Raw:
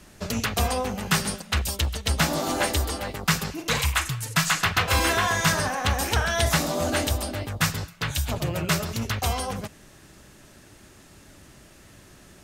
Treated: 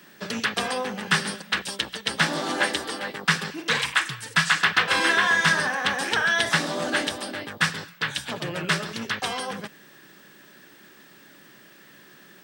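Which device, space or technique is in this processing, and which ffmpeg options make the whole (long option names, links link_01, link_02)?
old television with a line whistle: -af "highpass=frequency=170:width=0.5412,highpass=frequency=170:width=1.3066,equalizer=frequency=250:width_type=q:width=4:gain=-3,equalizer=frequency=670:width_type=q:width=4:gain=-5,equalizer=frequency=1700:width_type=q:width=4:gain=8,equalizer=frequency=3300:width_type=q:width=4:gain=4,equalizer=frequency=6800:width_type=q:width=4:gain=-8,lowpass=frequency=8900:width=0.5412,lowpass=frequency=8900:width=1.3066,aeval=exprs='val(0)+0.00178*sin(2*PI*15734*n/s)':channel_layout=same"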